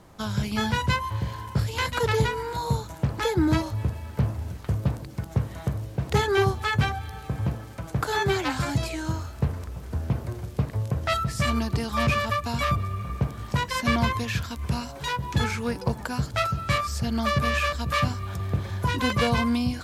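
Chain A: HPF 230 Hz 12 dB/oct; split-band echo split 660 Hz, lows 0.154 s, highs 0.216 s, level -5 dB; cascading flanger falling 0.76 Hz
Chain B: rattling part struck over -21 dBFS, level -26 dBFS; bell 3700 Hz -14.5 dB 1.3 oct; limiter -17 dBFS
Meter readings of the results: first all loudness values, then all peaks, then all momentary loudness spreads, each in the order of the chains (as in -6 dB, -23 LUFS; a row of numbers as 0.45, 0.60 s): -32.0, -29.0 LUFS; -13.5, -17.0 dBFS; 13, 6 LU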